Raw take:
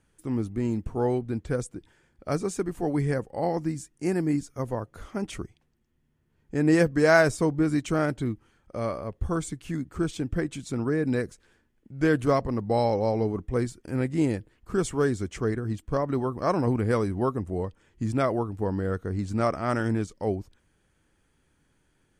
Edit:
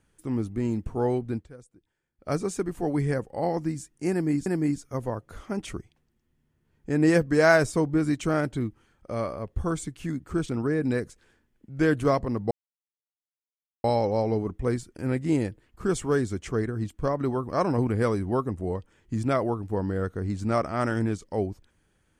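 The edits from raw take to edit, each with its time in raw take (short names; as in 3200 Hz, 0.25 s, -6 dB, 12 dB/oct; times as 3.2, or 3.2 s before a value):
1.35–2.3 dip -18.5 dB, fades 0.13 s
4.11–4.46 loop, 2 plays
10.14–10.71 cut
12.73 insert silence 1.33 s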